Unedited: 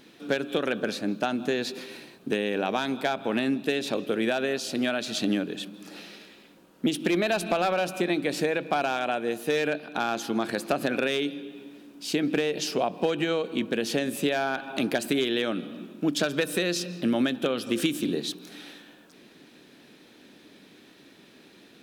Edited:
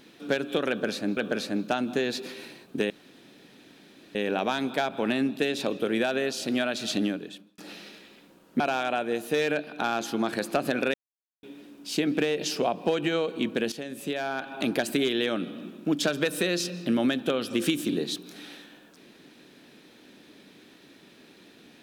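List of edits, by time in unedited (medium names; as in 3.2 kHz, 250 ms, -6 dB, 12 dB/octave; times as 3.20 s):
0.69–1.17 s: loop, 2 plays
2.42 s: insert room tone 1.25 s
5.23–5.85 s: fade out linear
6.87–8.76 s: delete
11.10–11.59 s: mute
13.88–14.89 s: fade in, from -12.5 dB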